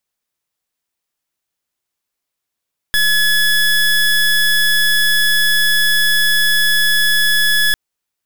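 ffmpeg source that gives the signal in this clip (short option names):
-f lavfi -i "aevalsrc='0.224*(2*lt(mod(1700*t,1),0.24)-1)':d=4.8:s=44100"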